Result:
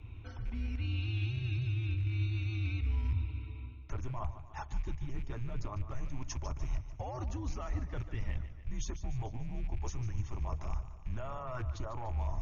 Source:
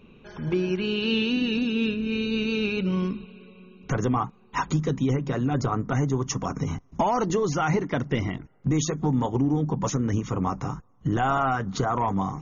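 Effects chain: rattle on loud lows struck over -28 dBFS, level -32 dBFS; frequency shift -120 Hz; reverse; compression 10:1, threshold -35 dBFS, peak gain reduction 17 dB; reverse; resonant low shelf 130 Hz +9 dB, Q 1.5; modulated delay 147 ms, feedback 56%, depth 72 cents, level -13 dB; trim -4 dB

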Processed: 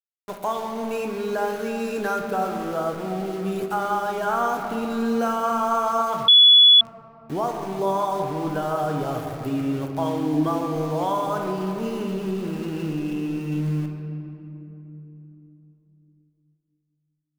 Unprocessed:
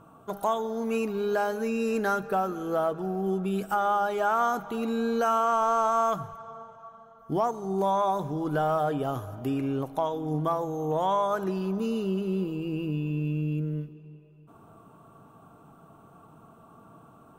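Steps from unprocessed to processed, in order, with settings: 4.28–4.85 s: bass shelf 140 Hz +10.5 dB; 10.02–10.74 s: small resonant body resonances 280/1600/3200 Hz, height 10 dB, ringing for 45 ms; small samples zeroed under -36.5 dBFS; simulated room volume 160 m³, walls hard, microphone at 0.3 m; 6.28–6.81 s: bleep 3.41 kHz -8.5 dBFS

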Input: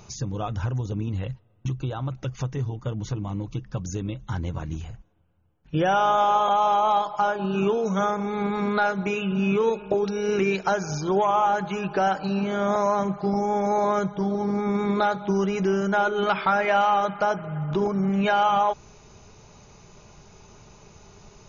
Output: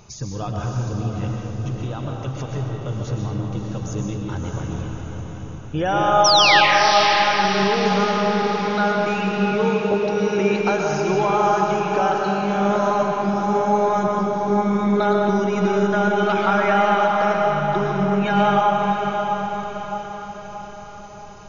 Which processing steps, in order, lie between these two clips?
painted sound fall, 6.24–6.61 s, 1.5–6.1 kHz -17 dBFS; echo that smears into a reverb 616 ms, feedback 51%, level -5.5 dB; algorithmic reverb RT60 1.9 s, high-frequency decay 0.65×, pre-delay 85 ms, DRR 0.5 dB

